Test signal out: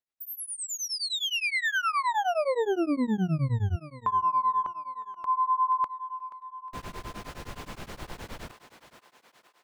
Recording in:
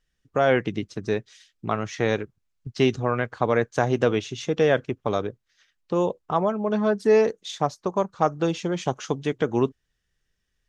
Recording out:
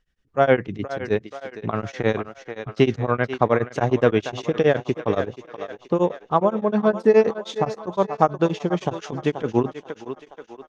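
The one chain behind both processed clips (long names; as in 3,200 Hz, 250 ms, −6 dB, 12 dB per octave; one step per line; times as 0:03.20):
low-pass filter 2,800 Hz 6 dB per octave
feedback echo with a high-pass in the loop 480 ms, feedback 58%, high-pass 350 Hz, level −11 dB
tremolo along a rectified sine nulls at 9.6 Hz
level +5.5 dB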